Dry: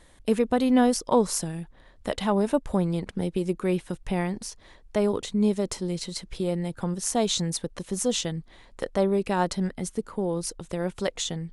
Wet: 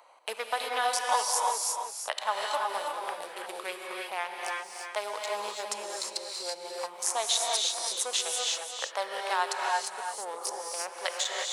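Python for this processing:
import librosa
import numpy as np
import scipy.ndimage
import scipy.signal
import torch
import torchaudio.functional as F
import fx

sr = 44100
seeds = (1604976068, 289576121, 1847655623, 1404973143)

p1 = fx.wiener(x, sr, points=25)
p2 = scipy.signal.sosfilt(scipy.signal.butter(4, 810.0, 'highpass', fs=sr, output='sos'), p1)
p3 = p2 + fx.echo_single(p2, sr, ms=328, db=-9.5, dry=0)
p4 = fx.rev_gated(p3, sr, seeds[0], gate_ms=380, shape='rising', drr_db=0.0)
p5 = fx.band_squash(p4, sr, depth_pct=40)
y = F.gain(torch.from_numpy(p5), 3.0).numpy()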